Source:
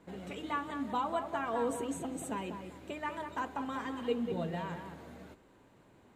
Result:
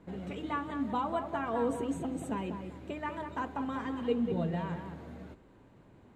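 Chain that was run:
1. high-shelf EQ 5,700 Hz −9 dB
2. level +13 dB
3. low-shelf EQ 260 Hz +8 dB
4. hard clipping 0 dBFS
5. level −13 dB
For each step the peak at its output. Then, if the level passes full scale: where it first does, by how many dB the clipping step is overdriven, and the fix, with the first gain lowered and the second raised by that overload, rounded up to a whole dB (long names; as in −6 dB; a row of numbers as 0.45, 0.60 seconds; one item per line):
−21.0, −8.0, −5.5, −5.5, −18.5 dBFS
no step passes full scale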